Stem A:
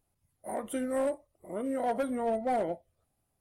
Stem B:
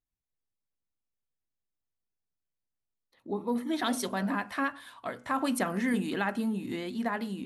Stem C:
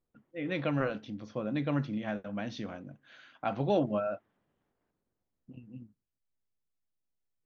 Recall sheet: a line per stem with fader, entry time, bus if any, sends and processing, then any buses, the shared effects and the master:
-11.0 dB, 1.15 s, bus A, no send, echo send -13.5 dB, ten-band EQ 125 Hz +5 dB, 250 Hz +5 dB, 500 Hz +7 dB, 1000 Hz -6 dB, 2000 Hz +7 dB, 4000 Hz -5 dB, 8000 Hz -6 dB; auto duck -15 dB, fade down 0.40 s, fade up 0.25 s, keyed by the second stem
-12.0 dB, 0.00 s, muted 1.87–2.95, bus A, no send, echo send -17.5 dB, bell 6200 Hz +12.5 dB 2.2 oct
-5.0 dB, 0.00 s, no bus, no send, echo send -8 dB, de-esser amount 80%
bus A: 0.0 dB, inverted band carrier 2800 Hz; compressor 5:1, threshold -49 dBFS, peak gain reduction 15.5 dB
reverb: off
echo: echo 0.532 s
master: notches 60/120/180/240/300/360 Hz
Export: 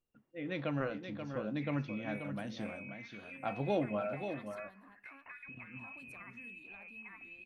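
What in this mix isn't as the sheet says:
stem A: missing ten-band EQ 125 Hz +5 dB, 250 Hz +5 dB, 500 Hz +7 dB, 1000 Hz -6 dB, 2000 Hz +7 dB, 4000 Hz -5 dB, 8000 Hz -6 dB; stem B: missing bell 6200 Hz +12.5 dB 2.2 oct; master: missing notches 60/120/180/240/300/360 Hz

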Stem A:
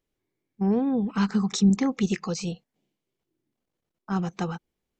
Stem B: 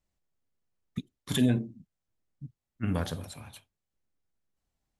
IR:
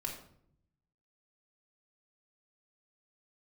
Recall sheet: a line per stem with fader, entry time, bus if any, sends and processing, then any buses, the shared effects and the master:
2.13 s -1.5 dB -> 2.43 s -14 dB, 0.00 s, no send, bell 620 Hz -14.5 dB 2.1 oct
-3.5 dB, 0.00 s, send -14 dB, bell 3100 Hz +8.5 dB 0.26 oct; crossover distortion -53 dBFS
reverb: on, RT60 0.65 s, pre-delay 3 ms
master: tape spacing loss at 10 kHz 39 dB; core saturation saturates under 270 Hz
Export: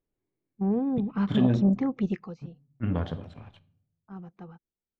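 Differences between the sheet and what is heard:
stem A: missing bell 620 Hz -14.5 dB 2.1 oct; stem B -3.5 dB -> +3.0 dB

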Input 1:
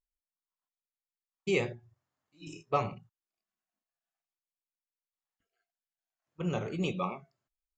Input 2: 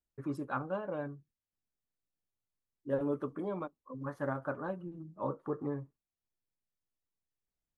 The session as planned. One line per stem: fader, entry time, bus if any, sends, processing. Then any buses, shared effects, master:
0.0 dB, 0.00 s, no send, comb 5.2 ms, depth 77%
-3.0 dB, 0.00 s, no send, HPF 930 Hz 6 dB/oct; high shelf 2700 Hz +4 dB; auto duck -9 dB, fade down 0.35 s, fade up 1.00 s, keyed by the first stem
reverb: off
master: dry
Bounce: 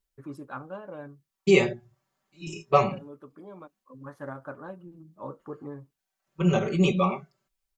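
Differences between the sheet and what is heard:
stem 1 0.0 dB -> +6.5 dB; stem 2: missing HPF 930 Hz 6 dB/oct

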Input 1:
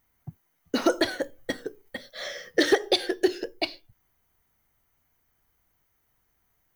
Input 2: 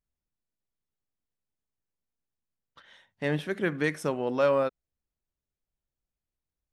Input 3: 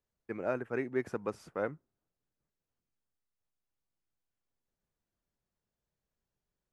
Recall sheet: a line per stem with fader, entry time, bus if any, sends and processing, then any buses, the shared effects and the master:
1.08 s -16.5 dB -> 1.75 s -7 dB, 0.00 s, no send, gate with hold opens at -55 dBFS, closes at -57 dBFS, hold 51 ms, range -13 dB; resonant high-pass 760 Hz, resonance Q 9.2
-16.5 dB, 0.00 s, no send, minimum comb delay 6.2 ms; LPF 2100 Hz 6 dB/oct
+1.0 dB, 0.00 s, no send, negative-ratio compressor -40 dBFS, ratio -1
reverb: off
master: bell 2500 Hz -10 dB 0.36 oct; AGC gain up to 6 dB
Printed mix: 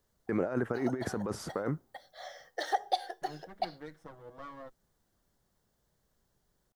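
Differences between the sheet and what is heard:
stem 1 -16.5 dB -> -23.0 dB; stem 3 +1.0 dB -> +8.0 dB; master: missing AGC gain up to 6 dB

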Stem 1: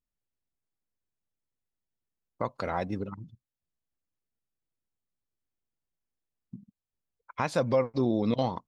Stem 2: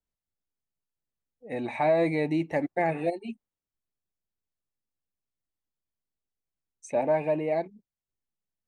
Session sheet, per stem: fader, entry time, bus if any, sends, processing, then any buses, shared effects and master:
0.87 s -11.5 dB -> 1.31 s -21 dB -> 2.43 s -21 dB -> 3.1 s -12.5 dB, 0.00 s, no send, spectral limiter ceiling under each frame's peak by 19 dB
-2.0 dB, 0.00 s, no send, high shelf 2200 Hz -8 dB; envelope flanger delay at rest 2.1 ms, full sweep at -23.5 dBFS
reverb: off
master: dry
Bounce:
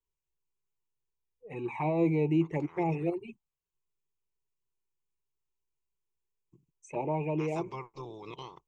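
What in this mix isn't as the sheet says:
stem 1 -11.5 dB -> -18.0 dB; master: extra ripple EQ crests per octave 0.72, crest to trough 14 dB

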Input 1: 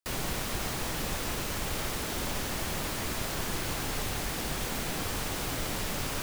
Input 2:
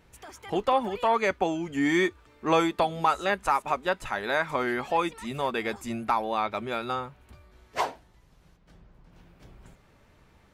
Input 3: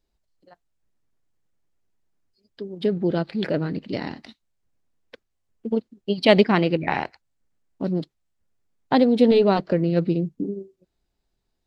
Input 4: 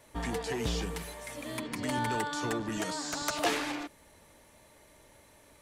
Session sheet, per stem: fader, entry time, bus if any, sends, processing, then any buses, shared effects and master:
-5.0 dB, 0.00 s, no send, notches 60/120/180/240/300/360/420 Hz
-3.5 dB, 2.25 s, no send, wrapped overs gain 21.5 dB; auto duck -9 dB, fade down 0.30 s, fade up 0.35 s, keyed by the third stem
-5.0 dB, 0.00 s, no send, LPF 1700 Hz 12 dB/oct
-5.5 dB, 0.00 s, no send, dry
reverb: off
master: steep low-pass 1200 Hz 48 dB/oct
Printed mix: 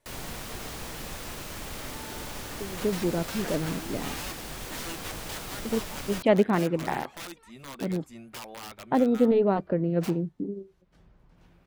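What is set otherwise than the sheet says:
stem 4 -5.5 dB -> -15.0 dB; master: missing steep low-pass 1200 Hz 48 dB/oct

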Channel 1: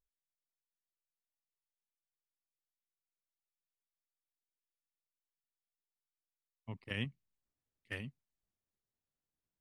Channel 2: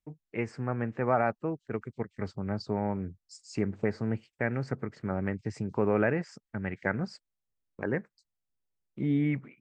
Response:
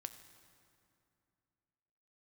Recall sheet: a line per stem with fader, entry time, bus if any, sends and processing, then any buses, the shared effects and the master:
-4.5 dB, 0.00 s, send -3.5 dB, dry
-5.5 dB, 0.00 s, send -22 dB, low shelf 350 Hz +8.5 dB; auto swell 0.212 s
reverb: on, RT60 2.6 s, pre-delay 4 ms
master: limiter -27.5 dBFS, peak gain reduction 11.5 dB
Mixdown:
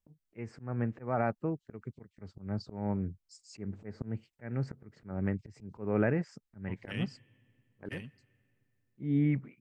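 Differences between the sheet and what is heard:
stem 2: send off; master: missing limiter -27.5 dBFS, peak gain reduction 11.5 dB

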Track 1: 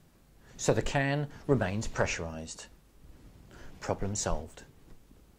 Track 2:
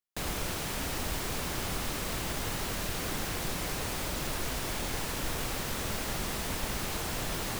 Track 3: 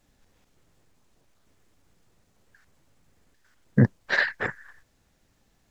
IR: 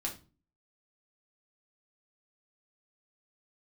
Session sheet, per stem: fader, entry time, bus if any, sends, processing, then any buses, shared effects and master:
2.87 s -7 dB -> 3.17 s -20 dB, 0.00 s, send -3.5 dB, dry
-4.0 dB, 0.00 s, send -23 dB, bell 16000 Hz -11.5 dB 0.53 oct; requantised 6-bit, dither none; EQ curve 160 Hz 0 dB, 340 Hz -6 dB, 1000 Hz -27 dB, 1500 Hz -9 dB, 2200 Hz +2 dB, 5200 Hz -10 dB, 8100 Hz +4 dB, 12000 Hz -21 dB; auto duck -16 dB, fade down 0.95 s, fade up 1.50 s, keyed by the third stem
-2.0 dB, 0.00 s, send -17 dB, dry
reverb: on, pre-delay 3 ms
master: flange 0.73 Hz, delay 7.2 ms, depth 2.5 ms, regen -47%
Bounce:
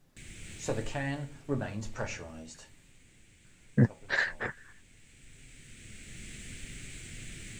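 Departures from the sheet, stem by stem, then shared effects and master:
stem 2: send off; stem 3: send off

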